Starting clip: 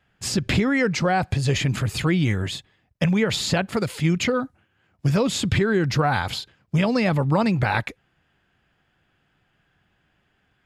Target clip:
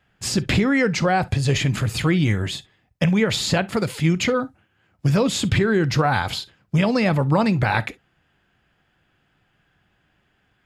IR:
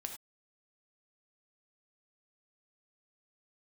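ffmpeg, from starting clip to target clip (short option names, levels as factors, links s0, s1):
-filter_complex "[0:a]asplit=2[s0][s1];[1:a]atrim=start_sample=2205,atrim=end_sample=3087[s2];[s1][s2]afir=irnorm=-1:irlink=0,volume=0.631[s3];[s0][s3]amix=inputs=2:normalize=0,volume=0.841"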